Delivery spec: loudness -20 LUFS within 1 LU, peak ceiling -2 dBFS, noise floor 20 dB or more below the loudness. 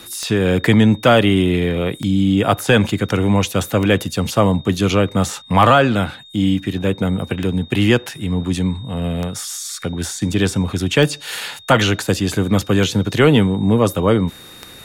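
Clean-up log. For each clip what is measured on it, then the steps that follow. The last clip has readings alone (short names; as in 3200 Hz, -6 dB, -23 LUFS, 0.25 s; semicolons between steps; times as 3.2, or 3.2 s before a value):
clicks 9; steady tone 3700 Hz; tone level -40 dBFS; loudness -17.5 LUFS; peak -1.5 dBFS; loudness target -20.0 LUFS
-> de-click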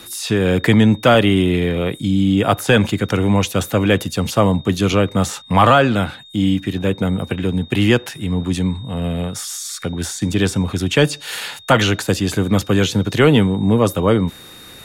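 clicks 0; steady tone 3700 Hz; tone level -40 dBFS
-> notch 3700 Hz, Q 30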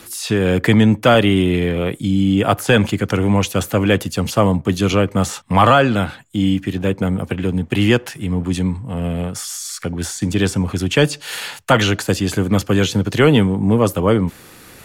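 steady tone none; loudness -17.5 LUFS; peak -1.5 dBFS; loudness target -20.0 LUFS
-> gain -2.5 dB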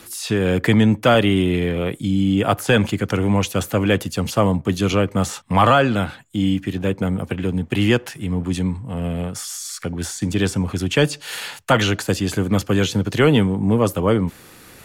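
loudness -20.0 LUFS; peak -4.0 dBFS; noise floor -45 dBFS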